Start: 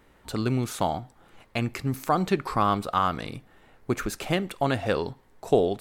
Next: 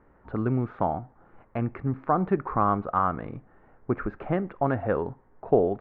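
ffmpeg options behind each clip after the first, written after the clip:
ffmpeg -i in.wav -af "lowpass=frequency=1600:width=0.5412,lowpass=frequency=1600:width=1.3066" out.wav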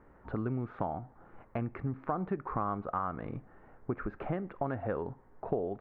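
ffmpeg -i in.wav -af "acompressor=threshold=-33dB:ratio=3" out.wav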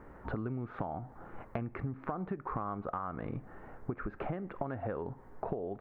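ffmpeg -i in.wav -af "acompressor=threshold=-41dB:ratio=6,volume=7dB" out.wav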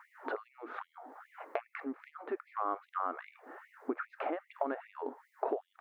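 ffmpeg -i in.wav -af "afftfilt=real='re*gte(b*sr/1024,230*pow(2000/230,0.5+0.5*sin(2*PI*2.5*pts/sr)))':imag='im*gte(b*sr/1024,230*pow(2000/230,0.5+0.5*sin(2*PI*2.5*pts/sr)))':win_size=1024:overlap=0.75,volume=4.5dB" out.wav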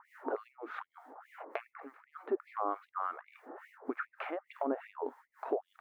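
ffmpeg -i in.wav -filter_complex "[0:a]acrossover=split=1100[link_01][link_02];[link_01]aeval=exprs='val(0)*(1-1/2+1/2*cos(2*PI*3.4*n/s))':channel_layout=same[link_03];[link_02]aeval=exprs='val(0)*(1-1/2-1/2*cos(2*PI*3.4*n/s))':channel_layout=same[link_04];[link_03][link_04]amix=inputs=2:normalize=0,volume=5dB" out.wav

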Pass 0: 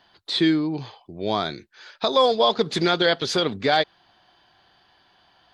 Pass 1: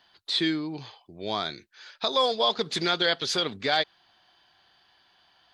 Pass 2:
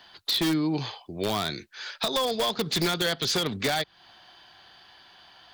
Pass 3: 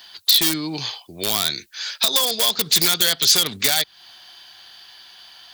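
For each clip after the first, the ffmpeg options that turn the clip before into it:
ffmpeg -i in.wav -af "tiltshelf=frequency=1200:gain=-4,volume=-4.5dB" out.wav
ffmpeg -i in.wav -filter_complex "[0:a]acrossover=split=210[link_01][link_02];[link_02]acompressor=threshold=-33dB:ratio=6[link_03];[link_01][link_03]amix=inputs=2:normalize=0,asplit=2[link_04][link_05];[link_05]aeval=exprs='(mod(22.4*val(0)+1,2)-1)/22.4':channel_layout=same,volume=-4.5dB[link_06];[link_04][link_06]amix=inputs=2:normalize=0,volume=5.5dB" out.wav
ffmpeg -i in.wav -af "crystalizer=i=7.5:c=0,volume=-2.5dB" out.wav

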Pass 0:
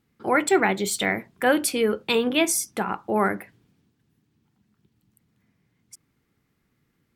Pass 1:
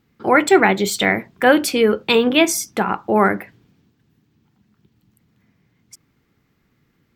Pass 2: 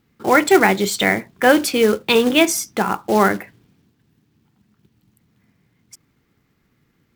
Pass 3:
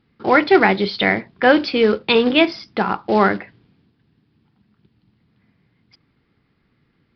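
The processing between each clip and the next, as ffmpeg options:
ffmpeg -i in.wav -af "equalizer=frequency=10000:width_type=o:width=0.62:gain=-10,volume=7dB" out.wav
ffmpeg -i in.wav -af "acrusher=bits=4:mode=log:mix=0:aa=0.000001" out.wav
ffmpeg -i in.wav -af "aresample=11025,aresample=44100" out.wav

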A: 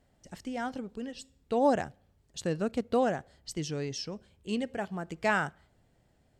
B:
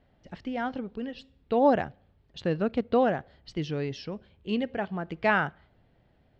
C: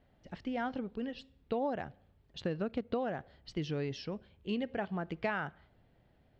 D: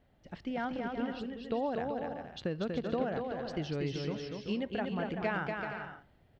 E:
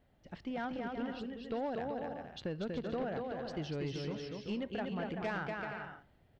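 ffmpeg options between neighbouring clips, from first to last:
ffmpeg -i in.wav -af "lowpass=frequency=3900:width=0.5412,lowpass=frequency=3900:width=1.3066,volume=3.5dB" out.wav
ffmpeg -i in.wav -af "acompressor=threshold=-27dB:ratio=10,volume=-3dB" out.wav
ffmpeg -i in.wav -af "aecho=1:1:240|384|470.4|522.2|553.3:0.631|0.398|0.251|0.158|0.1" out.wav
ffmpeg -i in.wav -af "asoftclip=type=tanh:threshold=-27dB,volume=-2dB" out.wav

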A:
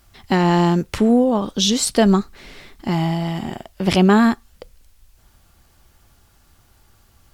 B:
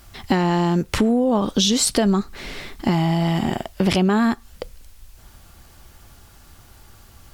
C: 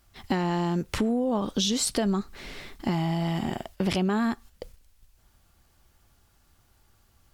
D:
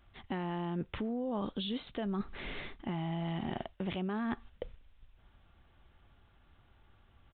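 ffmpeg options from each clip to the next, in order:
ffmpeg -i in.wav -filter_complex "[0:a]asplit=2[link_01][link_02];[link_02]alimiter=limit=-12dB:level=0:latency=1:release=18,volume=2.5dB[link_03];[link_01][link_03]amix=inputs=2:normalize=0,acompressor=threshold=-16dB:ratio=4" out.wav
ffmpeg -i in.wav -af "agate=range=-8dB:threshold=-38dB:ratio=16:detection=peak,volume=-7.5dB" out.wav
ffmpeg -i in.wav -af "areverse,acompressor=threshold=-33dB:ratio=6,areverse,aresample=8000,aresample=44100" out.wav

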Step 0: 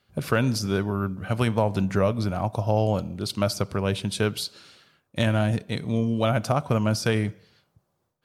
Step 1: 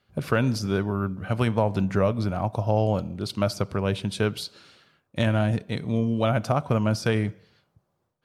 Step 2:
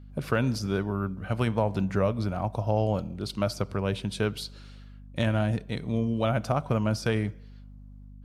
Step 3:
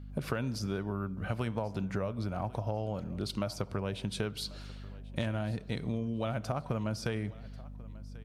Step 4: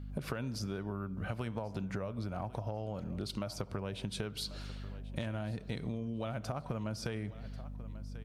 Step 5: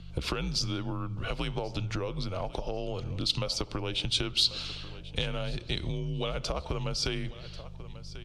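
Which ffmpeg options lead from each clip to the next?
ffmpeg -i in.wav -af "highshelf=frequency=4600:gain=-7" out.wav
ffmpeg -i in.wav -af "aeval=exprs='val(0)+0.00794*(sin(2*PI*50*n/s)+sin(2*PI*2*50*n/s)/2+sin(2*PI*3*50*n/s)/3+sin(2*PI*4*50*n/s)/4+sin(2*PI*5*50*n/s)/5)':channel_layout=same,volume=-3dB" out.wav
ffmpeg -i in.wav -af "acompressor=threshold=-32dB:ratio=6,aecho=1:1:1090|2180:0.0891|0.0285,volume=1.5dB" out.wav
ffmpeg -i in.wav -af "acompressor=threshold=-37dB:ratio=3,volume=1.5dB" out.wav
ffmpeg -i in.wav -af "highpass=100,lowpass=3500,afreqshift=-81,aexciter=amount=4.1:drive=7.9:freq=2700,volume=6dB" out.wav

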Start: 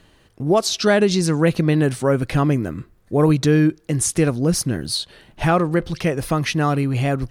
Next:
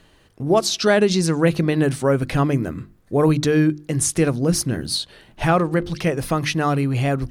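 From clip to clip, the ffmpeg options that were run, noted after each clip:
ffmpeg -i in.wav -af "bandreject=frequency=50:width_type=h:width=6,bandreject=frequency=100:width_type=h:width=6,bandreject=frequency=150:width_type=h:width=6,bandreject=frequency=200:width_type=h:width=6,bandreject=frequency=250:width_type=h:width=6,bandreject=frequency=300:width_type=h:width=6,bandreject=frequency=350:width_type=h:width=6" out.wav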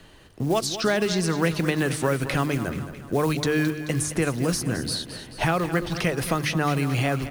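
ffmpeg -i in.wav -filter_complex "[0:a]acrusher=bits=8:mode=log:mix=0:aa=0.000001,acrossover=split=99|780|1800[link_01][link_02][link_03][link_04];[link_01]acompressor=threshold=-43dB:ratio=4[link_05];[link_02]acompressor=threshold=-28dB:ratio=4[link_06];[link_03]acompressor=threshold=-34dB:ratio=4[link_07];[link_04]acompressor=threshold=-33dB:ratio=4[link_08];[link_05][link_06][link_07][link_08]amix=inputs=4:normalize=0,aecho=1:1:217|434|651|868|1085|1302:0.251|0.136|0.0732|0.0396|0.0214|0.0115,volume=3.5dB" out.wav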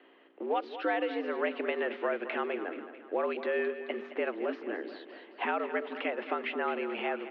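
ffmpeg -i in.wav -af "aeval=exprs='val(0)+0.00355*(sin(2*PI*60*n/s)+sin(2*PI*2*60*n/s)/2+sin(2*PI*3*60*n/s)/3+sin(2*PI*4*60*n/s)/4+sin(2*PI*5*60*n/s)/5)':channel_layout=same,highpass=frequency=200:width_type=q:width=0.5412,highpass=frequency=200:width_type=q:width=1.307,lowpass=frequency=2900:width_type=q:width=0.5176,lowpass=frequency=2900:width_type=q:width=0.7071,lowpass=frequency=2900:width_type=q:width=1.932,afreqshift=94,volume=-7dB" out.wav

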